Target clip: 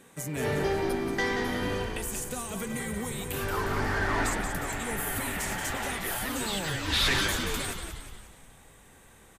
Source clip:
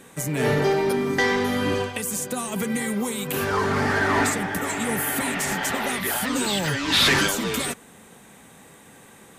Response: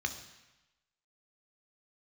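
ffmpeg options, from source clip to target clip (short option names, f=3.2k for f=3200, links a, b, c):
-filter_complex "[0:a]asplit=7[a][b][c][d][e][f][g];[b]adelay=180,afreqshift=-59,volume=-7dB[h];[c]adelay=360,afreqshift=-118,volume=-13dB[i];[d]adelay=540,afreqshift=-177,volume=-19dB[j];[e]adelay=720,afreqshift=-236,volume=-25.1dB[k];[f]adelay=900,afreqshift=-295,volume=-31.1dB[l];[g]adelay=1080,afreqshift=-354,volume=-37.1dB[m];[a][h][i][j][k][l][m]amix=inputs=7:normalize=0,asubboost=boost=4.5:cutoff=79,volume=-7.5dB"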